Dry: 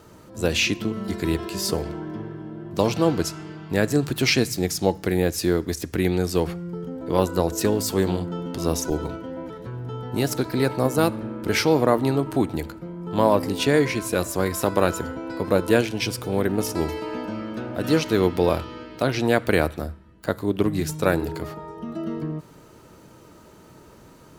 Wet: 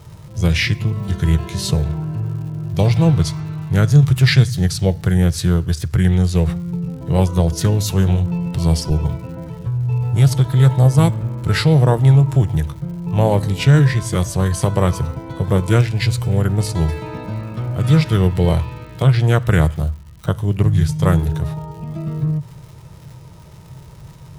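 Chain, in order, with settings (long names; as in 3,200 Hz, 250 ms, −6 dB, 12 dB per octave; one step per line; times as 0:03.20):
surface crackle 170 per second −39 dBFS
low shelf with overshoot 190 Hz +9 dB, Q 3
formants moved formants −3 semitones
level +2.5 dB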